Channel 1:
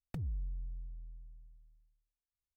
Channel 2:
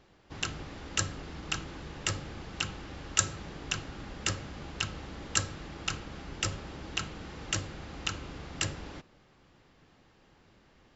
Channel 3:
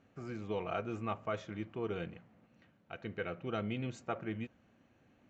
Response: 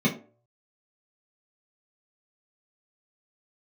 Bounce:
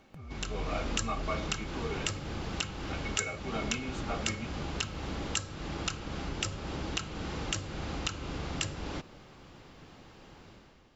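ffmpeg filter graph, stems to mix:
-filter_complex "[0:a]alimiter=level_in=12dB:limit=-24dB:level=0:latency=1,volume=-12dB,volume=2.5dB[a];[1:a]acompressor=threshold=-42dB:ratio=4,volume=-1.5dB[b];[2:a]highpass=820,acompressor=mode=upward:threshold=-49dB:ratio=2.5,volume=-7.5dB,asplit=2[c][d];[d]volume=-9.5dB[e];[a][c]amix=inputs=2:normalize=0,acompressor=threshold=-48dB:ratio=6,volume=0dB[f];[3:a]atrim=start_sample=2205[g];[e][g]afir=irnorm=-1:irlink=0[h];[b][f][h]amix=inputs=3:normalize=0,equalizer=f=1.8k:t=o:w=0.37:g=-3.5,dynaudnorm=f=100:g=9:m=11dB"

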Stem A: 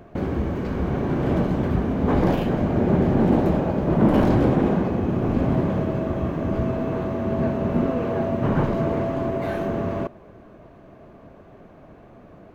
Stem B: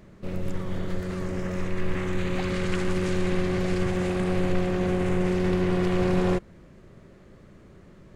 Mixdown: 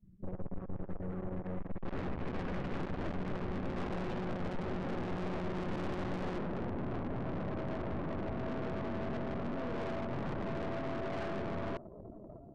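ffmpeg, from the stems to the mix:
-filter_complex "[0:a]acompressor=threshold=-27dB:ratio=4,adelay=1700,volume=2dB[a];[1:a]bandreject=f=73.37:t=h:w=4,bandreject=f=146.74:t=h:w=4,bandreject=f=220.11:t=h:w=4,bandreject=f=293.48:t=h:w=4,bandreject=f=366.85:t=h:w=4,bandreject=f=440.22:t=h:w=4,bandreject=f=513.59:t=h:w=4,bandreject=f=586.96:t=h:w=4,bandreject=f=660.33:t=h:w=4,bandreject=f=733.7:t=h:w=4,bandreject=f=807.07:t=h:w=4,bandreject=f=880.44:t=h:w=4,adynamicequalizer=threshold=0.00447:dfrequency=2600:dqfactor=0.7:tfrequency=2600:tqfactor=0.7:attack=5:release=100:ratio=0.375:range=2.5:mode=cutabove:tftype=bell,volume=-1dB[b];[a][b]amix=inputs=2:normalize=0,afftdn=nr=32:nf=-39,aeval=exprs='(tanh(63.1*val(0)+0.7)-tanh(0.7))/63.1':c=same"

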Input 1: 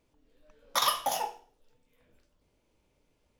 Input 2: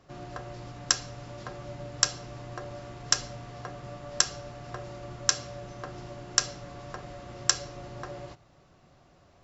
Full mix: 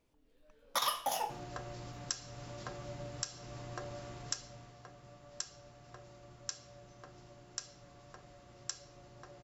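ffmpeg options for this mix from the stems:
-filter_complex "[0:a]volume=-3.5dB[a];[1:a]highshelf=f=6.3k:g=10,alimiter=limit=-6.5dB:level=0:latency=1:release=229,adelay=1200,volume=-4.5dB,afade=t=out:st=4.19:d=0.58:silence=0.316228[b];[a][b]amix=inputs=2:normalize=0,alimiter=limit=-19.5dB:level=0:latency=1:release=332"

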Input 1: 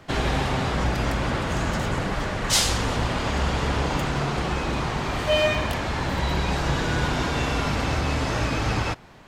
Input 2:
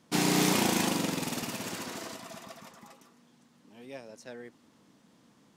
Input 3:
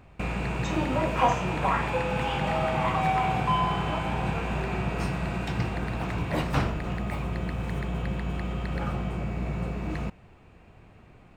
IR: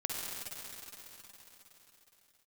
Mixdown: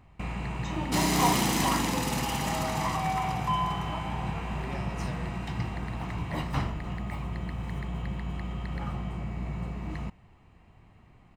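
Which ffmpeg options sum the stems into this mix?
-filter_complex "[1:a]asoftclip=type=tanh:threshold=-23.5dB,adelay=800,volume=0.5dB,asplit=2[a][b];[b]volume=-13.5dB[c];[2:a]volume=-5.5dB[d];[3:a]atrim=start_sample=2205[e];[c][e]afir=irnorm=-1:irlink=0[f];[a][d][f]amix=inputs=3:normalize=0,aecho=1:1:1:0.39"

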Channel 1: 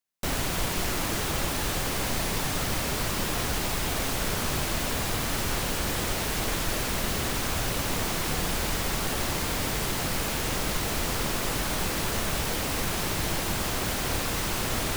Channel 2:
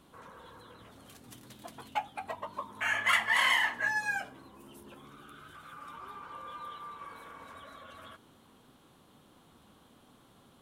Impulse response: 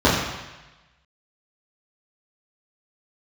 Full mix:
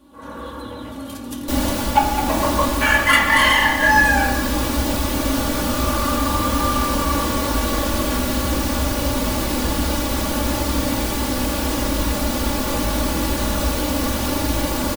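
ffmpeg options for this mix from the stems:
-filter_complex "[0:a]adelay=1250,volume=-14.5dB,asplit=2[a][b];[b]volume=-20dB[c];[1:a]volume=-1.5dB,asplit=2[d][e];[e]volume=-21dB[f];[2:a]atrim=start_sample=2205[g];[c][f]amix=inputs=2:normalize=0[h];[h][g]afir=irnorm=-1:irlink=0[i];[a][d][i]amix=inputs=3:normalize=0,highshelf=f=8.9k:g=5.5,aecho=1:1:3.5:0.8,dynaudnorm=f=160:g=3:m=12.5dB"

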